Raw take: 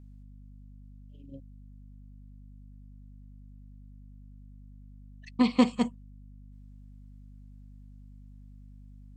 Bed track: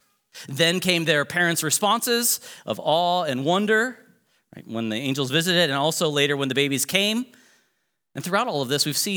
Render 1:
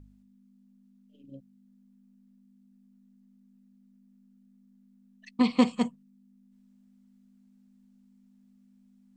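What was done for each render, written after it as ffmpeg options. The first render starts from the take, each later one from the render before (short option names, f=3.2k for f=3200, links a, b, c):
-af "bandreject=f=50:t=h:w=4,bandreject=f=100:t=h:w=4,bandreject=f=150:t=h:w=4"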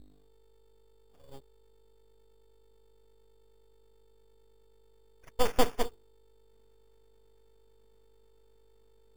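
-af "acrusher=samples=11:mix=1:aa=0.000001,aeval=exprs='abs(val(0))':c=same"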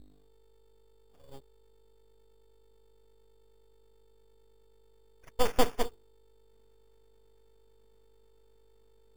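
-af anull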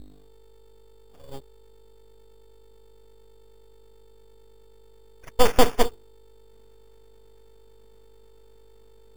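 -af "volume=10dB,alimiter=limit=-3dB:level=0:latency=1"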